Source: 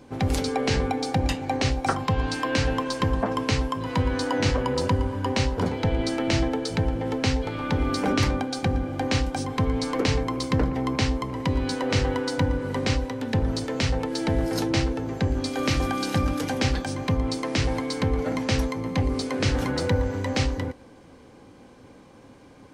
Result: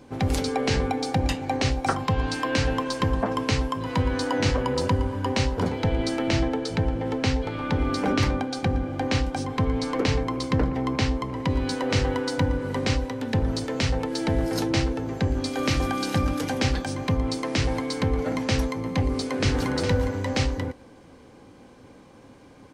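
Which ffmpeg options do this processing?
-filter_complex "[0:a]asettb=1/sr,asplit=3[a][b][c];[a]atrim=end=6.294[d];[b]atrim=start=6.29:end=11.5,asetpts=PTS-STARTPTS,afade=t=in:d=0.004:c=qsin,afade=t=out:st=5.206:d=0.004:c=qsin,highshelf=f=7.3k:g=-6.5[e];[c]atrim=start=11.496[f];[d][e]acrossfade=d=0.004:c1=hsin:c2=qsin[g];[g][f]acrossfade=d=0.004:c1=qsin:c2=hsin,asplit=2[h][i];[i]afade=t=in:st=19.03:d=0.01,afade=t=out:st=19.69:d=0.01,aecho=0:1:410|820:0.398107|0.0597161[j];[h][j]amix=inputs=2:normalize=0"

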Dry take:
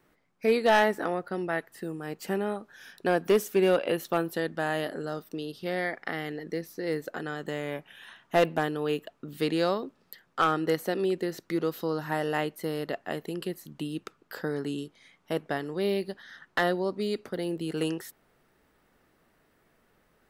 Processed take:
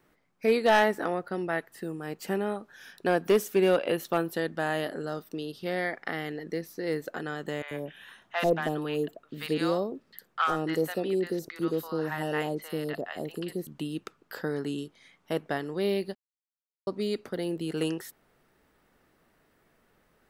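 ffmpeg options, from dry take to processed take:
-filter_complex "[0:a]asettb=1/sr,asplit=3[a][b][c];[a]atrim=end=7.624[d];[b]atrim=start=7.62:end=13.67,asetpts=PTS-STARTPTS,afade=t=in:d=0.004:c=qsin,afade=t=out:st=6.046:d=0.004:c=qsin,acrossover=split=800|4700[e][f][g];[g]adelay=60[h];[e]adelay=90[i];[i][f][h]amix=inputs=3:normalize=0,atrim=end_sample=266805[j];[c]atrim=start=13.666[k];[d][j]acrossfade=d=0.004:c1=hsin:c2=qsin[l];[l][k]acrossfade=d=0.004:c1=qsin:c2=hsin,asplit=3[m][n][o];[m]atrim=end=16.15,asetpts=PTS-STARTPTS,afade=t=out:st=16.146:d=0.004:c=hsin[p];[n]atrim=start=16.15:end=16.87,asetpts=PTS-STARTPTS,volume=0[q];[o]atrim=start=16.87,asetpts=PTS-STARTPTS,afade=t=in:d=0.004:c=hsin[r];[p][q][r]concat=n=3:v=0:a=1"

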